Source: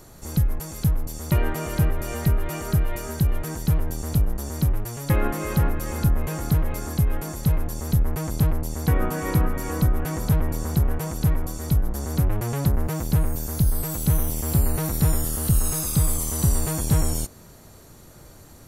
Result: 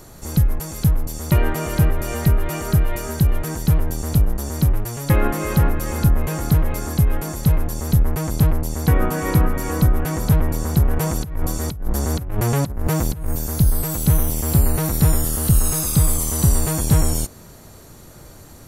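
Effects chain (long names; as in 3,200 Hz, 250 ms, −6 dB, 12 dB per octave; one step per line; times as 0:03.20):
0:10.93–0:13.30: compressor whose output falls as the input rises −24 dBFS, ratio −0.5
level +4.5 dB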